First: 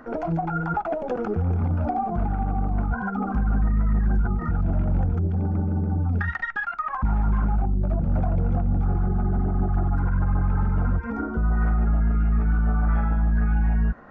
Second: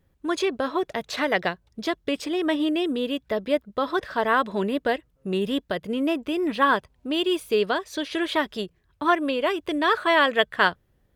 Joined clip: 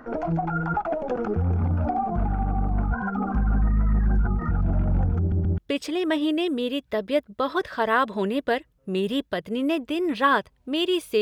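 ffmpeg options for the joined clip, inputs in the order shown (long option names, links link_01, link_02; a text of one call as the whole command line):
ffmpeg -i cue0.wav -i cue1.wav -filter_complex "[0:a]apad=whole_dur=11.21,atrim=end=11.21,asplit=3[link_01][link_02][link_03];[link_01]atrim=end=5.322[link_04];[link_02]atrim=start=5.188:end=5.322[link_05];[link_03]atrim=start=5.188:end=5.322[link_06];[1:a]atrim=start=1.958:end=7.59[link_07];[link_04][link_05]acrossfade=duration=0.004:curve1=hsin:curve2=hsin[link_08];[link_08][link_06]acrossfade=duration=0.004:curve1=hsin:curve2=hsin[link_09];[link_09][link_07]acrossfade=duration=0.004:curve1=hsin:curve2=hsin" out.wav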